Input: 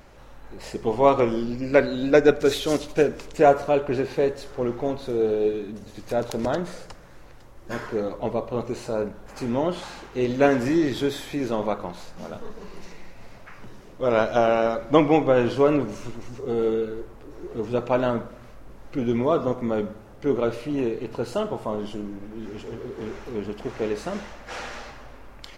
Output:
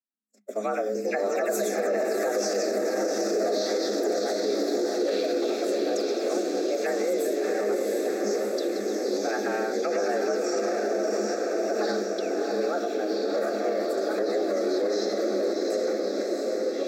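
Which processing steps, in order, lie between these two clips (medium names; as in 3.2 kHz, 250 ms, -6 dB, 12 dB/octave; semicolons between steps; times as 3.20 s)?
delay that grows with frequency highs early, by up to 206 ms; gate -33 dBFS, range -53 dB; resonant high shelf 6 kHz +13 dB, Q 3; ever faster or slower copies 392 ms, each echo -6 st, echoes 3; time stretch by phase-locked vocoder 0.66×; static phaser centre 2.8 kHz, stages 6; echo that smears into a reverb 697 ms, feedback 63%, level -3.5 dB; peak limiter -18 dBFS, peak gain reduction 9.5 dB; frequency shift +200 Hz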